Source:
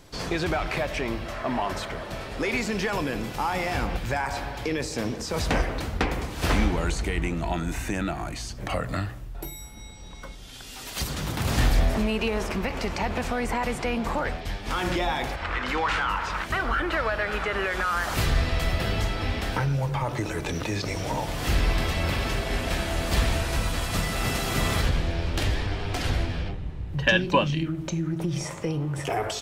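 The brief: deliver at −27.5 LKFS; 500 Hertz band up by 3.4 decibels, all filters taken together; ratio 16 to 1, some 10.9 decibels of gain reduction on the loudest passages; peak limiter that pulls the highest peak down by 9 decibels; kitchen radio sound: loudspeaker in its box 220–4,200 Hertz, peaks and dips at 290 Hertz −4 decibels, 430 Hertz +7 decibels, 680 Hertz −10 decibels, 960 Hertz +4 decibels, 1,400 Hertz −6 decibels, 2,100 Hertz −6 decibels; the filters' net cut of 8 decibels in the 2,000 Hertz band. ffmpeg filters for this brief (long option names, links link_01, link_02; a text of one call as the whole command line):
ffmpeg -i in.wav -af "equalizer=frequency=500:width_type=o:gain=3,equalizer=frequency=2000:width_type=o:gain=-5.5,acompressor=threshold=-27dB:ratio=16,alimiter=limit=-24dB:level=0:latency=1,highpass=220,equalizer=frequency=290:width_type=q:width=4:gain=-4,equalizer=frequency=430:width_type=q:width=4:gain=7,equalizer=frequency=680:width_type=q:width=4:gain=-10,equalizer=frequency=960:width_type=q:width=4:gain=4,equalizer=frequency=1400:width_type=q:width=4:gain=-6,equalizer=frequency=2100:width_type=q:width=4:gain=-6,lowpass=frequency=4200:width=0.5412,lowpass=frequency=4200:width=1.3066,volume=9dB" out.wav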